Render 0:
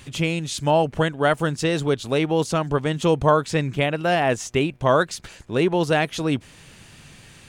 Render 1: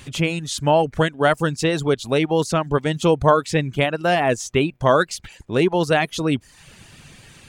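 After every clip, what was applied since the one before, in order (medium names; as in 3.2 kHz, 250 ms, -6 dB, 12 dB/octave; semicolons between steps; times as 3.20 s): reverb removal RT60 0.58 s; trim +2.5 dB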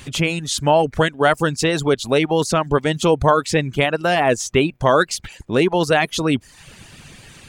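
harmonic-percussive split percussive +4 dB; in parallel at 0 dB: peak limiter -9 dBFS, peak gain reduction 9 dB; on the sum: trim -5 dB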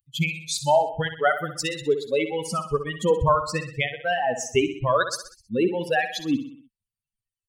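expander on every frequency bin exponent 3; feedback delay 63 ms, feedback 49%, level -10 dB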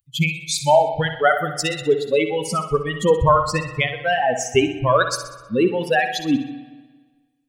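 reverberation RT60 1.4 s, pre-delay 32 ms, DRR 11.5 dB; trim +4.5 dB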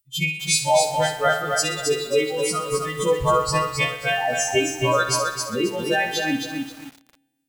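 partials quantised in pitch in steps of 2 st; bit-crushed delay 266 ms, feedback 35%, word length 6-bit, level -4 dB; trim -4.5 dB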